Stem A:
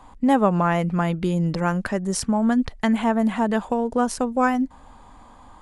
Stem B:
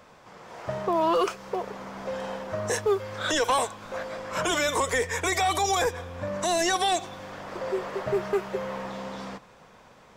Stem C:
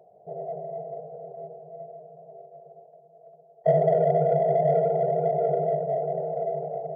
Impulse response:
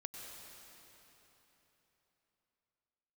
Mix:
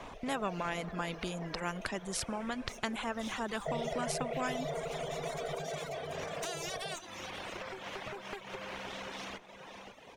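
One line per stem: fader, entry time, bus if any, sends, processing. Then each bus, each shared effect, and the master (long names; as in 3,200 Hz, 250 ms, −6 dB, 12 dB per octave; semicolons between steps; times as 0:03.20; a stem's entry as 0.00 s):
−7.5 dB, 0.00 s, send −13.5 dB, no echo send, no processing
−4.5 dB, 0.00 s, send −7 dB, echo send −10 dB, lower of the sound and its delayed copy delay 0.31 ms; low-shelf EQ 310 Hz −10.5 dB; downward compressor 6 to 1, threshold −37 dBFS, peak gain reduction 13.5 dB; automatic ducking −16 dB, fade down 1.40 s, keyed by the first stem
−5.0 dB, 0.00 s, no send, no echo send, no processing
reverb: on, RT60 3.7 s, pre-delay 89 ms
echo: single-tap delay 541 ms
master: low-pass filter 3,800 Hz 6 dB per octave; reverb reduction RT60 0.98 s; every bin compressed towards the loudest bin 2 to 1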